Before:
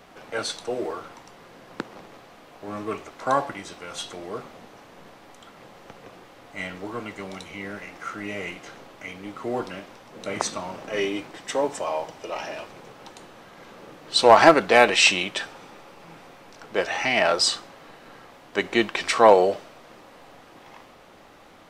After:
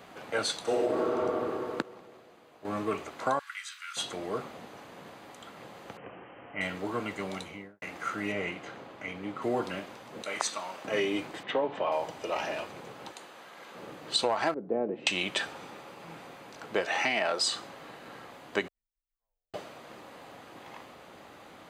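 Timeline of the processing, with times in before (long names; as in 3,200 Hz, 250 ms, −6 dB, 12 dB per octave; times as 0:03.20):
0:00.62–0:01.07: thrown reverb, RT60 2.6 s, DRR −9 dB
0:01.82–0:02.65: clip gain −10 dB
0:03.39–0:03.97: Butterworth high-pass 1,300 Hz 48 dB per octave
0:05.97–0:06.61: Chebyshev low-pass filter 3,100 Hz, order 8
0:07.36–0:07.82: fade out and dull
0:08.32–0:09.42: high-shelf EQ 5,000 Hz −11.5 dB
0:10.22–0:10.85: high-pass filter 1,100 Hz 6 dB per octave
0:11.43–0:11.92: Chebyshev band-pass filter 110–3,300 Hz, order 3
0:13.11–0:13.75: high-pass filter 620 Hz 6 dB per octave
0:14.54–0:15.07: flat-topped band-pass 250 Hz, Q 0.8
0:16.85–0:17.42: high-pass filter 160 Hz
0:18.68–0:19.54: inverse Chebyshev band-stop filter 130–9,100 Hz, stop band 80 dB
whole clip: high-pass filter 71 Hz; notch filter 5,500 Hz, Q 8.4; downward compressor 20 to 1, threshold −24 dBFS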